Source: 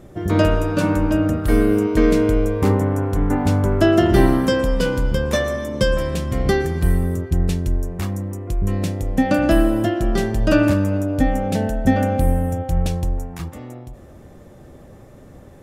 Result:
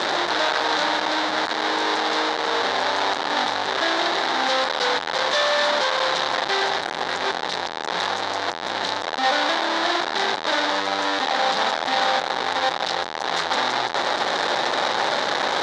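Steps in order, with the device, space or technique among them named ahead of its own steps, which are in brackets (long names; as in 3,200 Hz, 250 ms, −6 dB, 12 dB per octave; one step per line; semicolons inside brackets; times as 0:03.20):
home computer beeper (sign of each sample alone; loudspeaker in its box 610–5,400 Hz, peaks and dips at 840 Hz +6 dB, 1,700 Hz +4 dB, 2,600 Hz −6 dB, 3,800 Hz +9 dB)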